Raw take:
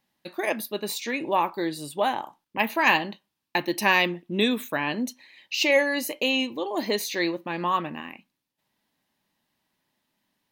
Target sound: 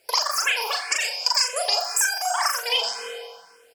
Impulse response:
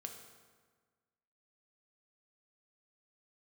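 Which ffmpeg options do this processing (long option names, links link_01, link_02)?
-filter_complex "[0:a]equalizer=frequency=1800:width=3.8:gain=12.5,asetrate=123921,aresample=44100,highpass=59,asplit=2[link_01][link_02];[1:a]atrim=start_sample=2205[link_03];[link_02][link_03]afir=irnorm=-1:irlink=0,volume=6dB[link_04];[link_01][link_04]amix=inputs=2:normalize=0,acompressor=threshold=-28dB:ratio=6,asplit=2[link_05][link_06];[link_06]adelay=39,volume=-3.5dB[link_07];[link_05][link_07]amix=inputs=2:normalize=0,asplit=2[link_08][link_09];[link_09]adelay=87.46,volume=-11dB,highshelf=frequency=4000:gain=-1.97[link_10];[link_08][link_10]amix=inputs=2:normalize=0,asplit=2[link_11][link_12];[link_12]afreqshift=1.9[link_13];[link_11][link_13]amix=inputs=2:normalize=1,volume=8.5dB"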